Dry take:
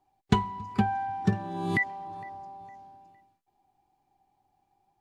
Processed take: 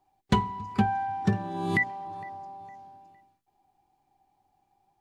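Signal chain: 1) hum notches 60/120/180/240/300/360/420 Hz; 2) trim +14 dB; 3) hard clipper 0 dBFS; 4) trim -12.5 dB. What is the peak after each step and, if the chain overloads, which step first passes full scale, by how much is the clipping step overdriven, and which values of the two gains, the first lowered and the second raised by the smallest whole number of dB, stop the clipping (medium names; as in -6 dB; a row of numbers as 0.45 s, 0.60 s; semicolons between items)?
-7.0 dBFS, +7.0 dBFS, 0.0 dBFS, -12.5 dBFS; step 2, 7.0 dB; step 2 +7 dB, step 4 -5.5 dB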